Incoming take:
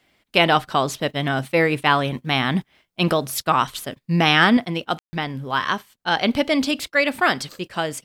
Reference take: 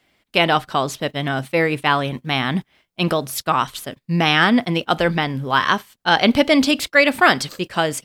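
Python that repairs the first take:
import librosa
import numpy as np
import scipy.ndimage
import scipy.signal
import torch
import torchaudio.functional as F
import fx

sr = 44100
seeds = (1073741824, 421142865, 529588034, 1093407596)

y = fx.fix_ambience(x, sr, seeds[0], print_start_s=2.5, print_end_s=3.0, start_s=4.99, end_s=5.13)
y = fx.fix_level(y, sr, at_s=4.57, step_db=5.0)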